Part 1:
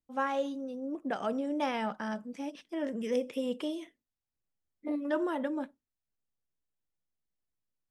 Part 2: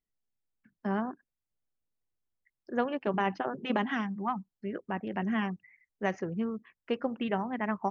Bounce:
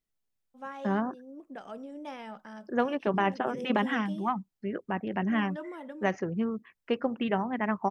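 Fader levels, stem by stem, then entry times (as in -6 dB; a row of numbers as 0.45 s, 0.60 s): -9.5 dB, +2.5 dB; 0.45 s, 0.00 s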